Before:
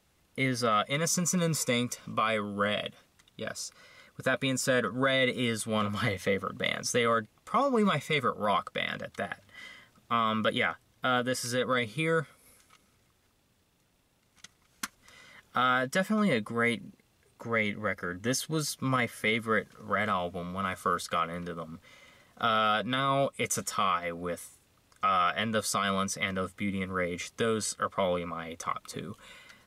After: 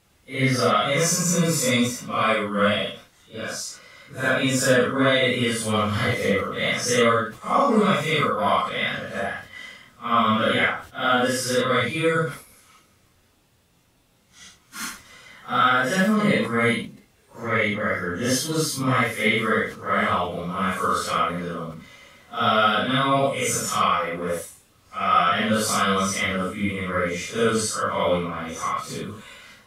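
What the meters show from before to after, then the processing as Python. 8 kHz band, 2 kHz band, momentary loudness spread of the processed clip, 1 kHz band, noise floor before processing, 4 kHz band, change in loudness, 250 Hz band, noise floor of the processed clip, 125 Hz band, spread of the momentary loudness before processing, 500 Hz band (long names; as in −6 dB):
+7.5 dB, +7.5 dB, 14 LU, +7.5 dB, −69 dBFS, +7.5 dB, +7.5 dB, +8.0 dB, −60 dBFS, +7.5 dB, 12 LU, +7.5 dB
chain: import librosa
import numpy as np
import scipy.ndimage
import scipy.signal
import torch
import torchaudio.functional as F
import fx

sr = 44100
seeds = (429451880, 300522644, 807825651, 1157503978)

y = fx.phase_scramble(x, sr, seeds[0], window_ms=200)
y = fx.sustainer(y, sr, db_per_s=130.0)
y = y * 10.0 ** (7.5 / 20.0)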